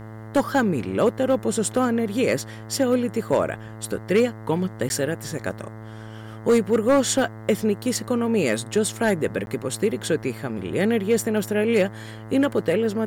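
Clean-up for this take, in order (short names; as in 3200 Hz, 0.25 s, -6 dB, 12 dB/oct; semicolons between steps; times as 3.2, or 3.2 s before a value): clip repair -11.5 dBFS; de-hum 109.8 Hz, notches 19; interpolate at 4.89/9.46, 11 ms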